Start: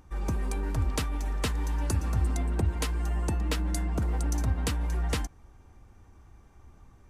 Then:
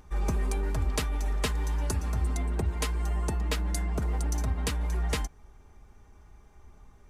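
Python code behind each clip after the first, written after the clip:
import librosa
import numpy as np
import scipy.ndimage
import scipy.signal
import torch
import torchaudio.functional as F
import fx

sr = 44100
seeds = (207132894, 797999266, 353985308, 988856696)

y = fx.peak_eq(x, sr, hz=210.0, db=-5.5, octaves=0.48)
y = y + 0.44 * np.pad(y, (int(4.8 * sr / 1000.0), 0))[:len(y)]
y = fx.rider(y, sr, range_db=10, speed_s=0.5)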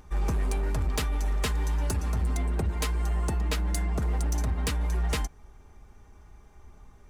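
y = np.clip(x, -10.0 ** (-24.5 / 20.0), 10.0 ** (-24.5 / 20.0))
y = F.gain(torch.from_numpy(y), 2.0).numpy()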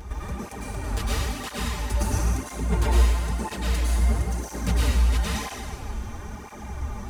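y = fx.over_compress(x, sr, threshold_db=-32.0, ratio=-0.5)
y = fx.rev_plate(y, sr, seeds[0], rt60_s=1.8, hf_ratio=1.0, predelay_ms=90, drr_db=-8.0)
y = fx.flanger_cancel(y, sr, hz=1.0, depth_ms=7.7)
y = F.gain(torch.from_numpy(y), 6.0).numpy()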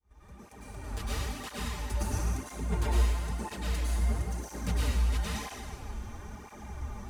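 y = fx.fade_in_head(x, sr, length_s=1.22)
y = F.gain(torch.from_numpy(y), -7.0).numpy()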